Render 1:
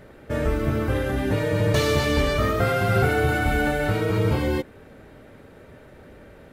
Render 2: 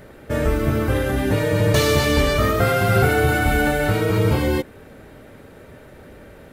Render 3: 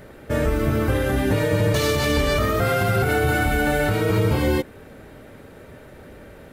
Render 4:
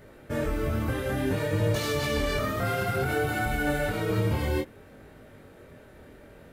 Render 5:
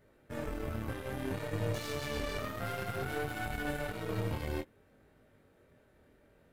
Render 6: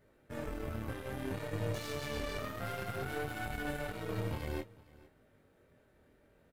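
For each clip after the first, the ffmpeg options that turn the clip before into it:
ffmpeg -i in.wav -af "highshelf=frequency=7600:gain=7,volume=3.5dB" out.wav
ffmpeg -i in.wav -af "alimiter=limit=-11dB:level=0:latency=1:release=85" out.wav
ffmpeg -i in.wav -af "flanger=delay=19:depth=7.2:speed=0.58,volume=-4dB" out.wav
ffmpeg -i in.wav -af "aeval=exprs='0.178*(cos(1*acos(clip(val(0)/0.178,-1,1)))-cos(1*PI/2))+0.0112*(cos(3*acos(clip(val(0)/0.178,-1,1)))-cos(3*PI/2))+0.0112*(cos(6*acos(clip(val(0)/0.178,-1,1)))-cos(6*PI/2))+0.00891*(cos(7*acos(clip(val(0)/0.178,-1,1)))-cos(7*PI/2))':channel_layout=same,volume=-8dB" out.wav
ffmpeg -i in.wav -af "aecho=1:1:457:0.0794,volume=-2dB" out.wav

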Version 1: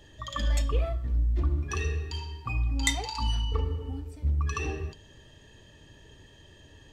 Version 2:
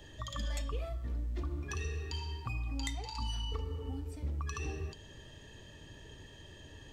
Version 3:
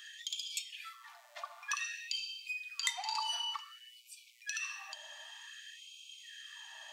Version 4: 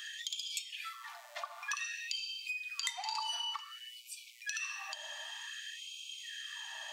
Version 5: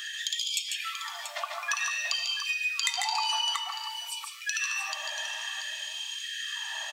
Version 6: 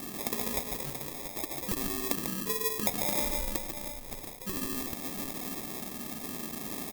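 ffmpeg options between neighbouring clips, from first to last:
ffmpeg -i in.wav -filter_complex "[0:a]acrossover=split=260|4500[link_01][link_02][link_03];[link_01]acompressor=threshold=-38dB:ratio=4[link_04];[link_02]acompressor=threshold=-45dB:ratio=4[link_05];[link_03]acompressor=threshold=-49dB:ratio=4[link_06];[link_04][link_05][link_06]amix=inputs=3:normalize=0,volume=1dB" out.wav
ffmpeg -i in.wav -af "afftfilt=real='re*gte(b*sr/1024,560*pow(2300/560,0.5+0.5*sin(2*PI*0.54*pts/sr)))':imag='im*gte(b*sr/1024,560*pow(2300/560,0.5+0.5*sin(2*PI*0.54*pts/sr)))':win_size=1024:overlap=0.75,volume=7.5dB" out.wav
ffmpeg -i in.wav -af "acompressor=threshold=-47dB:ratio=2,volume=6.5dB" out.wav
ffmpeg -i in.wav -af "aecho=1:1:145|161|685:0.562|0.282|0.335,volume=7.5dB" out.wav
ffmpeg -i in.wav -af "acrusher=samples=30:mix=1:aa=0.000001,aemphasis=mode=production:type=75fm,volume=-5dB" out.wav

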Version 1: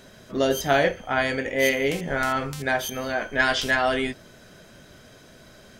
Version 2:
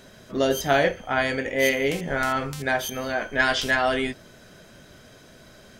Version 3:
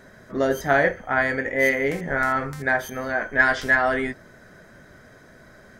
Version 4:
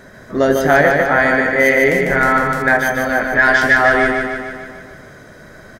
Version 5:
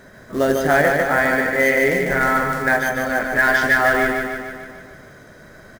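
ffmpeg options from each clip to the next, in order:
ffmpeg -i in.wav -af anull out.wav
ffmpeg -i in.wav -af "highshelf=frequency=2300:width_type=q:width=3:gain=-6" out.wav
ffmpeg -i in.wav -af "aecho=1:1:149|298|447|596|745|894|1043|1192:0.596|0.351|0.207|0.122|0.0722|0.0426|0.0251|0.0148,alimiter=level_in=8.5dB:limit=-1dB:release=50:level=0:latency=1,volume=-1dB" out.wav
ffmpeg -i in.wav -af "acrusher=bits=5:mode=log:mix=0:aa=0.000001,volume=-4dB" out.wav

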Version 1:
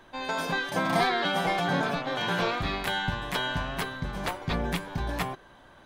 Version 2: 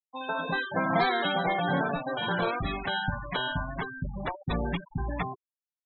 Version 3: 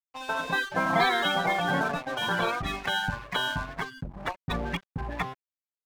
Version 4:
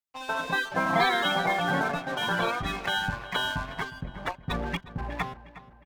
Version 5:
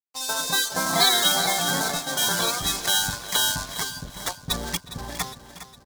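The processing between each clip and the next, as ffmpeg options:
ffmpeg -i in.wav -af "afftfilt=real='re*gte(hypot(re,im),0.0562)':imag='im*gte(hypot(re,im),0.0562)':win_size=1024:overlap=0.75" out.wav
ffmpeg -i in.wav -filter_complex "[0:a]acrossover=split=340|840[link_01][link_02][link_03];[link_03]acontrast=26[link_04];[link_01][link_02][link_04]amix=inputs=3:normalize=0,aeval=exprs='sgn(val(0))*max(abs(val(0))-0.0119,0)':channel_layout=same" out.wav
ffmpeg -i in.wav -filter_complex "[0:a]asplit=2[link_01][link_02];[link_02]adelay=361,lowpass=frequency=4000:poles=1,volume=-15.5dB,asplit=2[link_03][link_04];[link_04]adelay=361,lowpass=frequency=4000:poles=1,volume=0.49,asplit=2[link_05][link_06];[link_06]adelay=361,lowpass=frequency=4000:poles=1,volume=0.49,asplit=2[link_07][link_08];[link_08]adelay=361,lowpass=frequency=4000:poles=1,volume=0.49[link_09];[link_01][link_03][link_05][link_07][link_09]amix=inputs=5:normalize=0" out.wav
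ffmpeg -i in.wav -af "aexciter=amount=14.9:drive=3:freq=4000,aeval=exprs='sgn(val(0))*max(abs(val(0))-0.00473,0)':channel_layout=same,aecho=1:1:409|818|1227|1636|2045:0.224|0.112|0.056|0.028|0.014" out.wav

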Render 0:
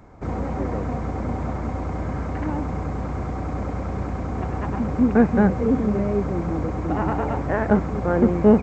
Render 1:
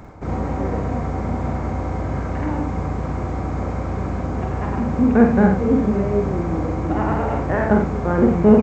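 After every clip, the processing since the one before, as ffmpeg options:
ffmpeg -i in.wav -af "areverse,acompressor=mode=upward:threshold=-25dB:ratio=2.5,areverse,aecho=1:1:46.65|87.46:0.631|0.355,volume=1dB" out.wav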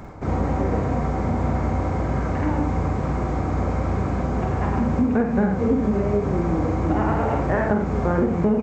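ffmpeg -i in.wav -af "acompressor=threshold=-18dB:ratio=10,flanger=delay=5:depth=8.4:regen=-68:speed=0.93:shape=sinusoidal,volume=6dB" out.wav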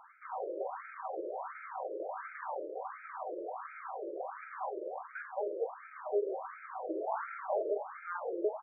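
ffmpeg -i in.wav -af "afftfilt=real='re*between(b*sr/1024,430*pow(1800/430,0.5+0.5*sin(2*PI*1.4*pts/sr))/1.41,430*pow(1800/430,0.5+0.5*sin(2*PI*1.4*pts/sr))*1.41)':imag='im*between(b*sr/1024,430*pow(1800/430,0.5+0.5*sin(2*PI*1.4*pts/sr))/1.41,430*pow(1800/430,0.5+0.5*sin(2*PI*1.4*pts/sr))*1.41)':win_size=1024:overlap=0.75,volume=-7dB" out.wav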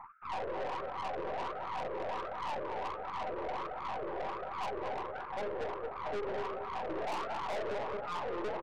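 ffmpeg -i in.wav -filter_complex "[0:a]highshelf=frequency=1500:width_type=q:width=3:gain=-12,asplit=2[link_01][link_02];[link_02]adelay=224,lowpass=frequency=1400:poles=1,volume=-5.5dB,asplit=2[link_03][link_04];[link_04]adelay=224,lowpass=frequency=1400:poles=1,volume=0.27,asplit=2[link_05][link_06];[link_06]adelay=224,lowpass=frequency=1400:poles=1,volume=0.27,asplit=2[link_07][link_08];[link_08]adelay=224,lowpass=frequency=1400:poles=1,volume=0.27[link_09];[link_01][link_03][link_05][link_07][link_09]amix=inputs=5:normalize=0,aeval=exprs='(tanh(89.1*val(0)+0.55)-tanh(0.55))/89.1':channel_layout=same,volume=4.5dB" out.wav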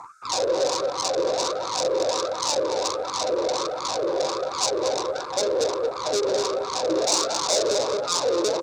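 ffmpeg -i in.wav -af "aexciter=amount=15.1:drive=9.2:freq=5000,highpass=110,equalizer=frequency=200:width_type=q:width=4:gain=-9,equalizer=frequency=310:width_type=q:width=4:gain=6,equalizer=frequency=520:width_type=q:width=4:gain=9,equalizer=frequency=810:width_type=q:width=4:gain=-5,equalizer=frequency=1900:width_type=q:width=4:gain=-9,equalizer=frequency=3600:width_type=q:width=4:gain=10,lowpass=frequency=7100:width=0.5412,lowpass=frequency=7100:width=1.3066,aeval=exprs='0.133*(cos(1*acos(clip(val(0)/0.133,-1,1)))-cos(1*PI/2))+0.00531*(cos(5*acos(clip(val(0)/0.133,-1,1)))-cos(5*PI/2))':channel_layout=same,volume=9dB" out.wav

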